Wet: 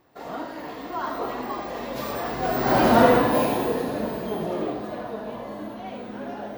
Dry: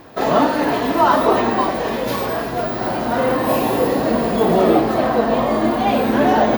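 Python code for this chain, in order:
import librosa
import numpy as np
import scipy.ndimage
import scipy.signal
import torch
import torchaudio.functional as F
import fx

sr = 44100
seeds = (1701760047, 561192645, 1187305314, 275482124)

p1 = fx.doppler_pass(x, sr, speed_mps=19, closest_m=3.7, pass_at_s=2.89)
p2 = p1 + fx.echo_single(p1, sr, ms=76, db=-7.5, dry=0)
y = p2 * 10.0 ** (4.0 / 20.0)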